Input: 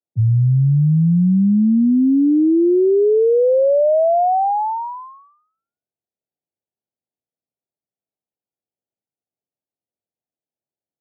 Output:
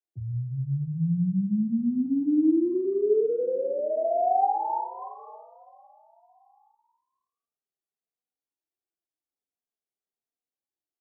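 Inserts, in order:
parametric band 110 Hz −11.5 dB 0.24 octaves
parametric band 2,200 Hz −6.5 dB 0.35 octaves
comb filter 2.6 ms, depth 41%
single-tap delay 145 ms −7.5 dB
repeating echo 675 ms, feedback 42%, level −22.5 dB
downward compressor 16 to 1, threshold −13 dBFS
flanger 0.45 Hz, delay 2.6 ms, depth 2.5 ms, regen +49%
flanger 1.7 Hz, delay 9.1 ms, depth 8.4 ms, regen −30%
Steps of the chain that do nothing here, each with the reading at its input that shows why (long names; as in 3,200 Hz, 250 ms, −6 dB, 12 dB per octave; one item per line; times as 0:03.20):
parametric band 2,200 Hz: nothing at its input above 1,100 Hz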